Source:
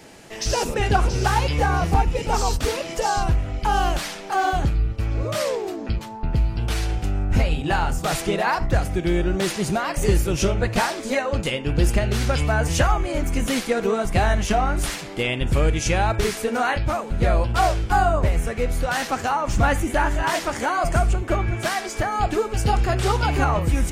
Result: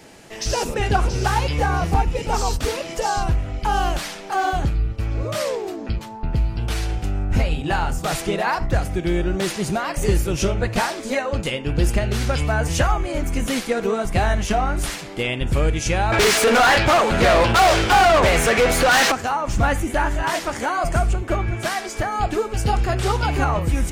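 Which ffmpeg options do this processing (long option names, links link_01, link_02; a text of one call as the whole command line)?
ffmpeg -i in.wav -filter_complex "[0:a]asettb=1/sr,asplit=3[link_01][link_02][link_03];[link_01]atrim=end=16.124[link_04];[link_02]atrim=start=16.12:end=19.12,asetpts=PTS-STARTPTS,afade=type=in:duration=0.004:curve=qsin,afade=type=out:start_time=2.996:duration=0.004:curve=qsin,asplit=2[link_05][link_06];[link_06]highpass=frequency=720:poles=1,volume=28dB,asoftclip=type=tanh:threshold=-8dB[link_07];[link_05][link_07]amix=inputs=2:normalize=0,lowpass=frequency=5800:poles=1,volume=-6dB[link_08];[link_03]atrim=start=19.116[link_09];[link_04][link_08]acrossfade=duration=0.004:curve1=hsin:curve2=qsin[link_10];[link_10][link_09]acrossfade=duration=0.004:curve1=qsin:curve2=hsin" out.wav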